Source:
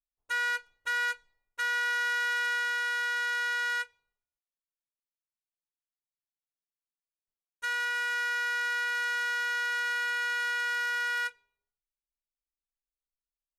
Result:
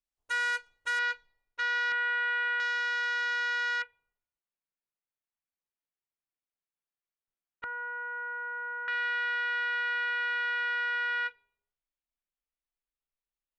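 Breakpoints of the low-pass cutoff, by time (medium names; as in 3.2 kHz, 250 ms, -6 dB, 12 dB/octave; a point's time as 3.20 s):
low-pass 24 dB/octave
10 kHz
from 0.99 s 5.1 kHz
from 1.92 s 3 kHz
from 2.60 s 5.7 kHz
from 3.82 s 2.9 kHz
from 7.64 s 1.3 kHz
from 8.88 s 3.5 kHz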